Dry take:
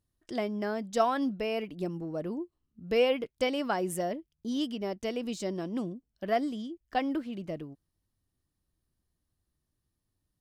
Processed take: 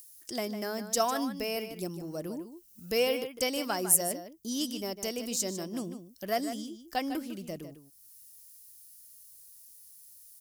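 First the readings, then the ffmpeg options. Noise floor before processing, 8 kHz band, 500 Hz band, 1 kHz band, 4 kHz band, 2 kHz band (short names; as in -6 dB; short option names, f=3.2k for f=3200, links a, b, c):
-83 dBFS, +16.5 dB, -2.5 dB, -2.0 dB, +4.0 dB, -0.5 dB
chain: -filter_complex "[0:a]acrossover=split=1700[a][b];[b]acompressor=mode=upward:threshold=-57dB:ratio=2.5[c];[a][c]amix=inputs=2:normalize=0,aexciter=amount=2.8:drive=5.9:freq=5k,highshelf=f=4.4k:g=12,asplit=2[d][e];[e]adelay=151.6,volume=-10dB,highshelf=f=4k:g=-3.41[f];[d][f]amix=inputs=2:normalize=0,volume=-3dB"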